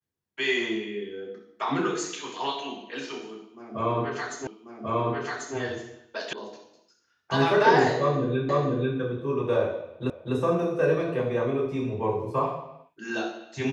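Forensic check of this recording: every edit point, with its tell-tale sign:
0:04.47: the same again, the last 1.09 s
0:06.33: cut off before it has died away
0:08.49: the same again, the last 0.49 s
0:10.10: the same again, the last 0.25 s

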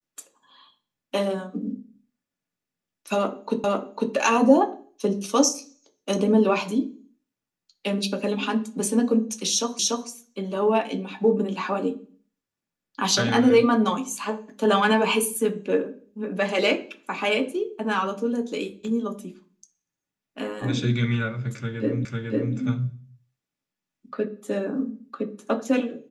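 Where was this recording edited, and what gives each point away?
0:03.64: the same again, the last 0.5 s
0:09.79: the same again, the last 0.29 s
0:22.05: the same again, the last 0.5 s

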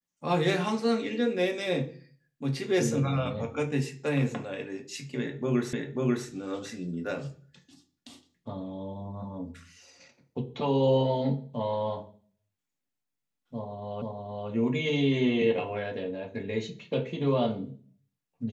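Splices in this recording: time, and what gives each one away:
0:05.73: the same again, the last 0.54 s
0:14.02: the same again, the last 0.47 s

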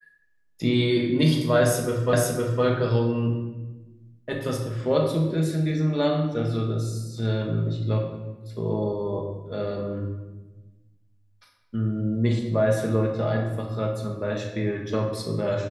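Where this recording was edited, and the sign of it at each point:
0:02.13: the same again, the last 0.51 s

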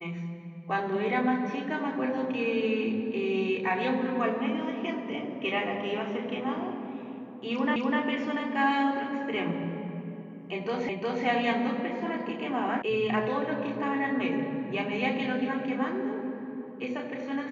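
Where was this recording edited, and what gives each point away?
0:07.76: the same again, the last 0.25 s
0:10.89: the same again, the last 0.36 s
0:12.82: cut off before it has died away

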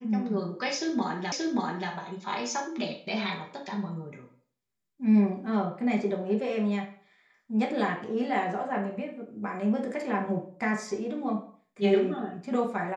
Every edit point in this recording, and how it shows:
0:01.32: the same again, the last 0.58 s

